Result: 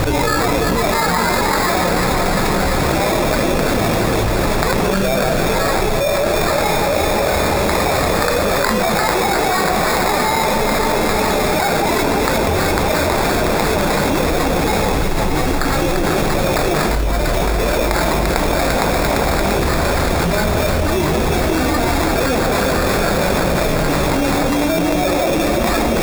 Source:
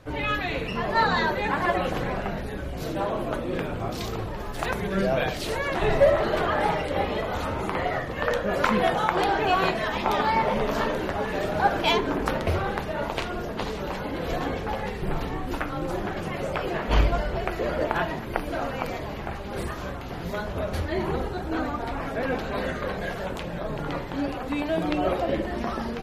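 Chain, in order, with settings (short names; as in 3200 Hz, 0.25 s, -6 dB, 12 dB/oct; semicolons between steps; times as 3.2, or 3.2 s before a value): flange 1.4 Hz, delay 0.7 ms, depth 6.2 ms, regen +64%; sample-rate reducer 3000 Hz, jitter 0%; echo with dull and thin repeats by turns 0.172 s, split 1200 Hz, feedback 88%, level -6 dB; fast leveller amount 100%; gain +3 dB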